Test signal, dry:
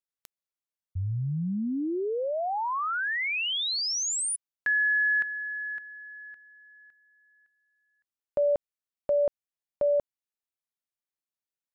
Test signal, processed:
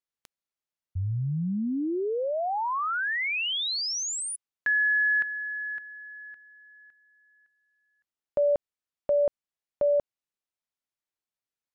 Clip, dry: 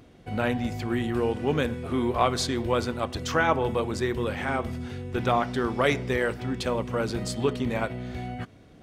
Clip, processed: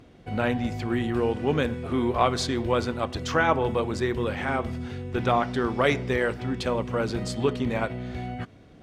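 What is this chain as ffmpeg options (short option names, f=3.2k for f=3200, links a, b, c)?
-af "highshelf=f=10k:g=-11,volume=1dB"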